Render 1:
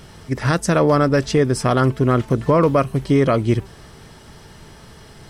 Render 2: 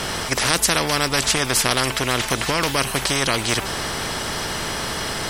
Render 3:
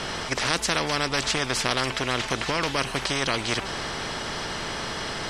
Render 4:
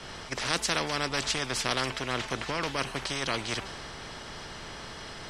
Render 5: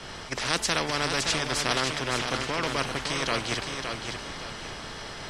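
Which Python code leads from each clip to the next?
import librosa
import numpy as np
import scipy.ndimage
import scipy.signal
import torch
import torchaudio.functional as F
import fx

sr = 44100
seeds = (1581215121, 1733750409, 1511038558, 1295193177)

y1 = fx.spectral_comp(x, sr, ratio=4.0)
y1 = y1 * librosa.db_to_amplitude(5.0)
y2 = scipy.signal.sosfilt(scipy.signal.butter(2, 6000.0, 'lowpass', fs=sr, output='sos'), y1)
y2 = fx.peak_eq(y2, sr, hz=74.0, db=-3.0, octaves=1.6)
y2 = y2 + 10.0 ** (-20.5 / 20.0) * np.pad(y2, (int(236 * sr / 1000.0), 0))[:len(y2)]
y2 = y2 * librosa.db_to_amplitude(-4.5)
y3 = fx.band_widen(y2, sr, depth_pct=70)
y3 = y3 * librosa.db_to_amplitude(-5.0)
y4 = fx.echo_feedback(y3, sr, ms=567, feedback_pct=36, wet_db=-6.0)
y4 = y4 * librosa.db_to_amplitude(2.0)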